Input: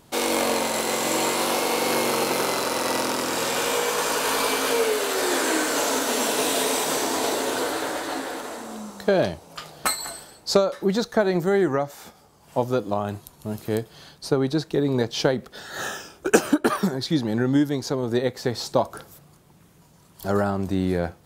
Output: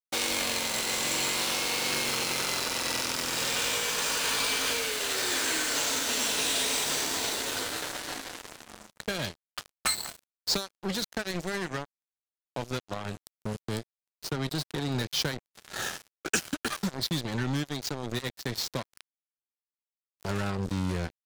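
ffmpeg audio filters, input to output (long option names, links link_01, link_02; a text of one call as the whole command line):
ffmpeg -i in.wav -filter_complex "[0:a]lowpass=8100,acrossover=split=150|1700|3000[link_01][link_02][link_03][link_04];[link_02]acompressor=threshold=-37dB:ratio=6[link_05];[link_01][link_05][link_03][link_04]amix=inputs=4:normalize=0,acrusher=bits=4:mix=0:aa=0.5" out.wav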